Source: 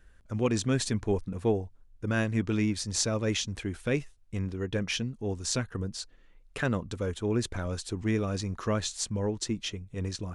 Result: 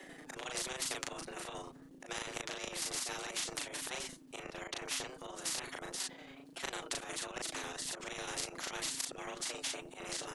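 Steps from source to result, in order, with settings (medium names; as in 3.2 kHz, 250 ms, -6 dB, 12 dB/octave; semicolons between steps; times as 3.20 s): frequency shift +250 Hz; square tremolo 11 Hz, depth 60%, duty 40%; flange 1.5 Hz, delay 5.1 ms, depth 2.4 ms, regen +17%; slow attack 127 ms; doubling 37 ms -3 dB; spectrum-flattening compressor 4:1; trim +3 dB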